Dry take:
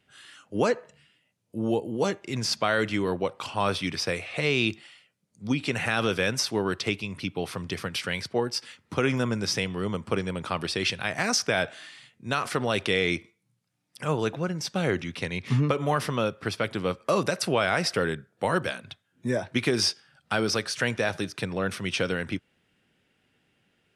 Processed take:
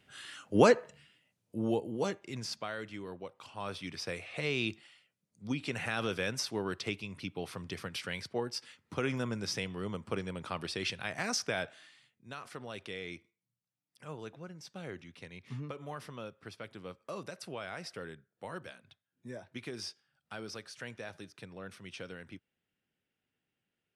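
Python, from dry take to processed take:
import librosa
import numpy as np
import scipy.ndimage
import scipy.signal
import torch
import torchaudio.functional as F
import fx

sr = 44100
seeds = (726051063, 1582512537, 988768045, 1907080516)

y = fx.gain(x, sr, db=fx.line((0.61, 2.0), (2.23, -8.5), (2.82, -16.5), (3.38, -16.5), (4.27, -8.5), (11.49, -8.5), (12.31, -17.5)))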